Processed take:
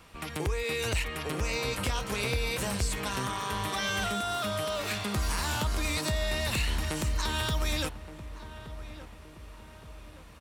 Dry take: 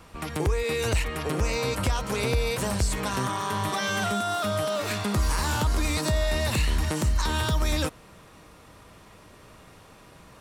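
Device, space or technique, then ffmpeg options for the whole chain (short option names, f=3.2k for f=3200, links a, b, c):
presence and air boost: -filter_complex "[0:a]asettb=1/sr,asplit=3[a][b][c];[a]atrim=end=1.704[d];[b]atrim=start=1.7:end=2.77,asetpts=PTS-STARTPTS,afade=t=in:d=0.004:c=qsin,afade=t=out:st=1.066:d=0.004:c=qsin,asplit=2[e][f];[f]adelay=25,volume=-8.5dB[g];[e][g]amix=inputs=2:normalize=0,atrim=end_sample=47187[h];[c]atrim=start=2.766[i];[d][h]acrossfade=d=0.004:c1=hsin:c2=qsin[j];[j][i]acrossfade=d=0.004:c1=qsin:c2=hsin,equalizer=f=2.8k:t=o:w=1.6:g=5.5,highshelf=f=9.8k:g=5.5,asplit=2[k][l];[l]adelay=1171,lowpass=f=1.5k:p=1,volume=-13dB,asplit=2[m][n];[n]adelay=1171,lowpass=f=1.5k:p=1,volume=0.52,asplit=2[o][p];[p]adelay=1171,lowpass=f=1.5k:p=1,volume=0.52,asplit=2[q][r];[r]adelay=1171,lowpass=f=1.5k:p=1,volume=0.52,asplit=2[s][t];[t]adelay=1171,lowpass=f=1.5k:p=1,volume=0.52[u];[k][m][o][q][s][u]amix=inputs=6:normalize=0,volume=-6dB"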